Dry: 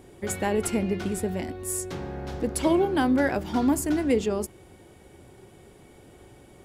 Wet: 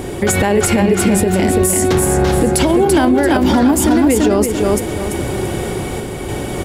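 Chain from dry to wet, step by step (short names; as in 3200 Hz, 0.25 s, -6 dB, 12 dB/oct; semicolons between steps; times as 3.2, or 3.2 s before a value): compressor 10:1, threshold -33 dBFS, peak gain reduction 16 dB; random-step tremolo; feedback echo 0.338 s, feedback 34%, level -5 dB; maximiser +33 dB; gain -3.5 dB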